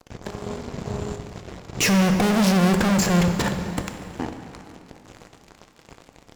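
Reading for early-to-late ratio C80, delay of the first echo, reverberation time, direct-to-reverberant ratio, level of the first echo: 8.0 dB, no echo audible, 2.8 s, 6.0 dB, no echo audible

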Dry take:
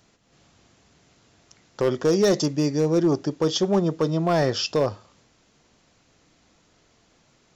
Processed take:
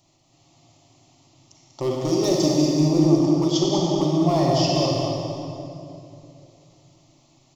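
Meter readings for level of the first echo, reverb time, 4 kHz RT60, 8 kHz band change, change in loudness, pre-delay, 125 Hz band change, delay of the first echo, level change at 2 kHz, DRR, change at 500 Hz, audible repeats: −6.0 dB, 2.8 s, 2.0 s, can't be measured, +2.0 dB, 32 ms, +4.5 dB, 193 ms, −5.5 dB, −3.0 dB, −0.5 dB, 1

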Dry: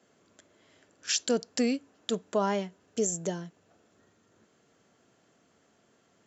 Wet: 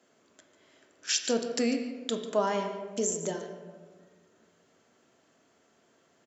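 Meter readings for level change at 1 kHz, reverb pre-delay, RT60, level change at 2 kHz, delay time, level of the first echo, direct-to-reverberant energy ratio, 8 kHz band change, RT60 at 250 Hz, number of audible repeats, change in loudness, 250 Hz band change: +1.0 dB, 3 ms, 1.6 s, +1.0 dB, 145 ms, −14.5 dB, 4.5 dB, can't be measured, 1.8 s, 1, 0.0 dB, −1.0 dB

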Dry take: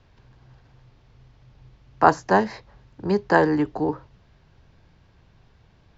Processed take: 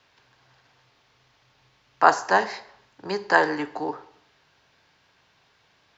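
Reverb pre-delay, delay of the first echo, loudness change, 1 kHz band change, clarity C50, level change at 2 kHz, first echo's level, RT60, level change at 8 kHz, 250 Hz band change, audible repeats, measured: 5 ms, no echo audible, −1.0 dB, 0.0 dB, 15.5 dB, +3.0 dB, no echo audible, 0.70 s, can't be measured, −9.0 dB, no echo audible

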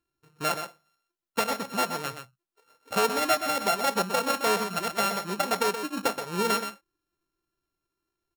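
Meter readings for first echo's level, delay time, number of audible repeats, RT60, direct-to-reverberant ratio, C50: −8.5 dB, 125 ms, 1, no reverb audible, no reverb audible, no reverb audible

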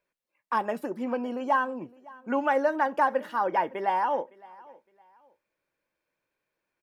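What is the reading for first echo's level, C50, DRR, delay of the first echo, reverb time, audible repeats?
−23.0 dB, no reverb audible, no reverb audible, 561 ms, no reverb audible, 2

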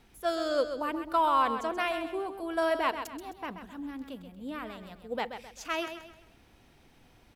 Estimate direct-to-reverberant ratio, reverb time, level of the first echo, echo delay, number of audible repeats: no reverb audible, no reverb audible, −9.0 dB, 131 ms, 4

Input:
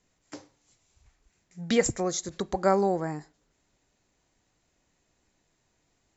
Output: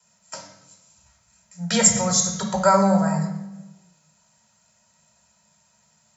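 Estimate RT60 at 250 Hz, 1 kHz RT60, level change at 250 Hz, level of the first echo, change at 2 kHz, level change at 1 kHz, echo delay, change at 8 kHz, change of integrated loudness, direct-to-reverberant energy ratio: 1.5 s, 0.90 s, +8.5 dB, no echo audible, +6.5 dB, +8.0 dB, no echo audible, can't be measured, +8.0 dB, −2.0 dB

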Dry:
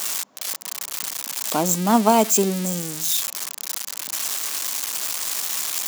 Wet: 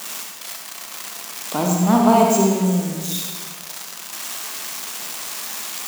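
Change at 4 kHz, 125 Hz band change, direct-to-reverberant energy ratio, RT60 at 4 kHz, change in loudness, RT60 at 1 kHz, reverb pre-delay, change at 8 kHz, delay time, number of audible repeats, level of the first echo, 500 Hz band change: −2.0 dB, +6.5 dB, −0.5 dB, 1.3 s, +0.5 dB, 1.5 s, 39 ms, −4.0 dB, no echo audible, no echo audible, no echo audible, +2.5 dB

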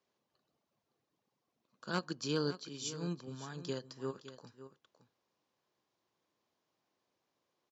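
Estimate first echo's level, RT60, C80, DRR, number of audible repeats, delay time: −13.5 dB, no reverb audible, no reverb audible, no reverb audible, 1, 564 ms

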